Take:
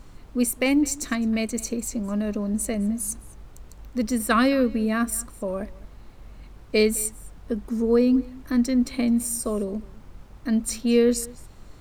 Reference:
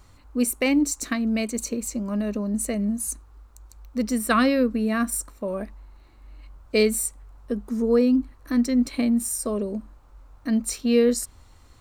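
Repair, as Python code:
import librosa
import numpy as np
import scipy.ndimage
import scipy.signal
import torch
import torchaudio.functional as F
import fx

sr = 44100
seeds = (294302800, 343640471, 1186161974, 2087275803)

y = fx.noise_reduce(x, sr, print_start_s=9.94, print_end_s=10.44, reduce_db=6.0)
y = fx.fix_echo_inverse(y, sr, delay_ms=211, level_db=-22.0)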